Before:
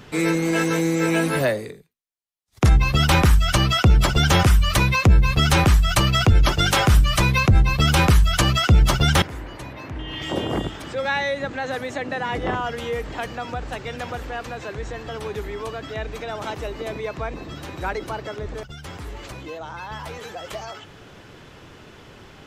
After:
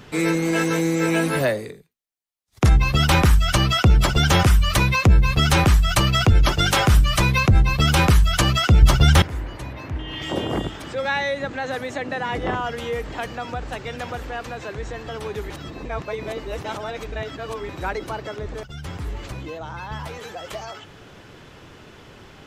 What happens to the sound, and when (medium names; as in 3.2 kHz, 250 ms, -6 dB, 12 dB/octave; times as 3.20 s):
8.82–9.97 s: peaking EQ 65 Hz +7.5 dB 1.7 oct
15.50–17.69 s: reverse
18.74–20.07 s: tone controls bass +6 dB, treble -1 dB